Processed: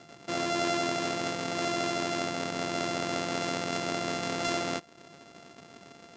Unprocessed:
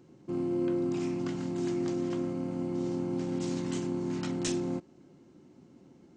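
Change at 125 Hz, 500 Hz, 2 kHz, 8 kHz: −4.0, +1.5, +15.0, +6.5 decibels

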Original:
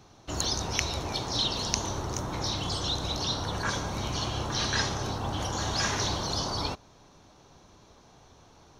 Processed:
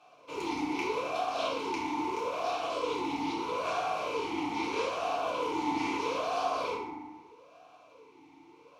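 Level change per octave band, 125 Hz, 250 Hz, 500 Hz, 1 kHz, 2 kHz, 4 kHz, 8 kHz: −20.0, +1.0, +4.0, +3.0, −2.5, −11.5, −16.0 decibels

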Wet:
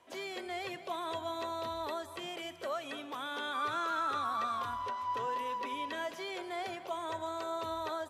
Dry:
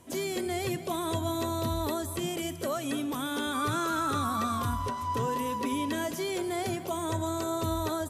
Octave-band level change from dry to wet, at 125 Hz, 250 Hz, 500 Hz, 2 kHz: −21.0, −14.5, −6.5, −3.0 decibels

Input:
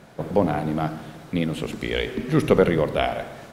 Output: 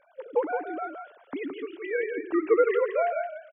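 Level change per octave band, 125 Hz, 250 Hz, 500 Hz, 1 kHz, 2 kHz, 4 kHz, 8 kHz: below −40 dB, −9.0 dB, −2.5 dB, −3.5 dB, −4.0 dB, below −20 dB, below −35 dB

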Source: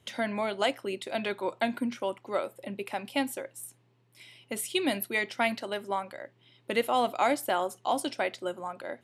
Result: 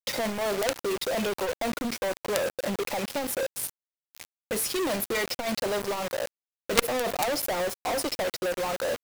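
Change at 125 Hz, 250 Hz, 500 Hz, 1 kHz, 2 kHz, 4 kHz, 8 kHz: +5.5, +0.5, +3.5, −1.5, +1.0, +4.0, +8.5 decibels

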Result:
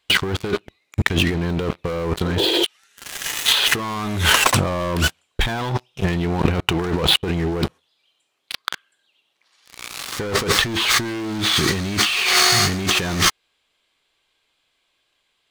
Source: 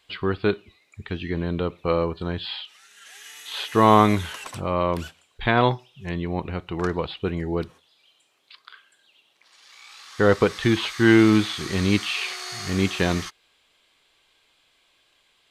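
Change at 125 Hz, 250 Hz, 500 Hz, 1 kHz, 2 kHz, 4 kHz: +3.5, −2.0, −1.5, 0.0, +7.0, +13.0 decibels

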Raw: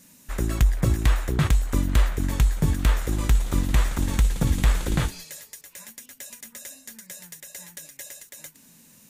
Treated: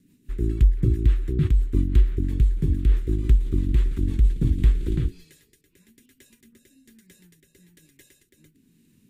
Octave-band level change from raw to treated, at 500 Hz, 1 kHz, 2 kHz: −1.5 dB, below −20 dB, −14.0 dB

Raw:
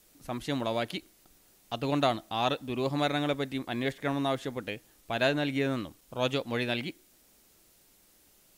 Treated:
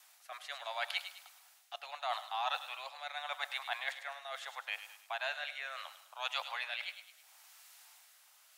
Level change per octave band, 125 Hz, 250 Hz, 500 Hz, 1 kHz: below −40 dB, below −40 dB, −17.0 dB, −6.0 dB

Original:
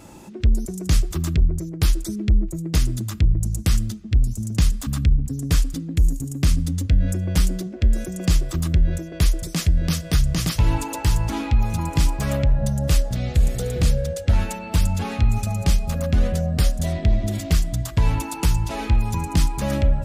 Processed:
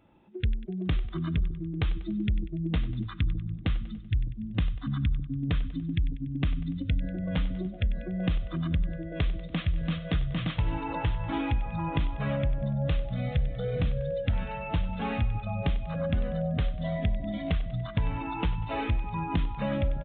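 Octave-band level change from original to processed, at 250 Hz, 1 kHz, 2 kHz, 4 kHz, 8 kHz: −5.5 dB, −4.5 dB, −5.0 dB, −10.0 dB, below −40 dB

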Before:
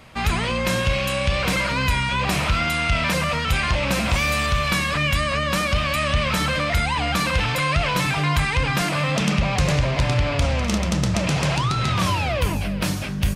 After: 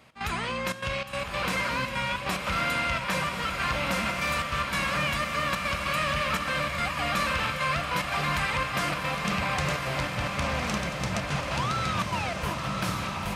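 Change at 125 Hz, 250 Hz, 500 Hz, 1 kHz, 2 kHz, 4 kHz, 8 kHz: −11.5, −9.0, −7.0, −4.0, −5.0, −7.0, −7.5 decibels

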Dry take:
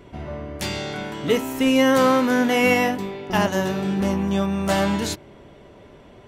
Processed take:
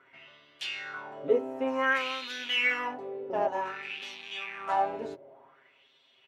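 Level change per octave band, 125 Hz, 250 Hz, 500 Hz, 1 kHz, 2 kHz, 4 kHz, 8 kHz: −29.0, −20.5, −10.0, −7.0, −5.0, −6.0, −20.0 decibels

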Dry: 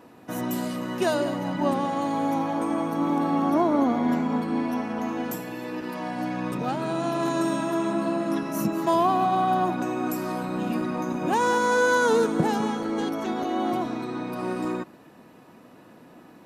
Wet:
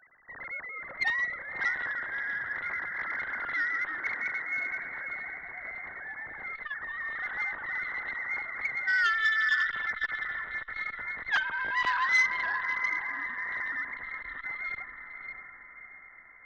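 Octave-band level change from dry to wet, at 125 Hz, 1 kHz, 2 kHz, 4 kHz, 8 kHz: below −20 dB, −11.0 dB, +6.5 dB, −3.0 dB, below −10 dB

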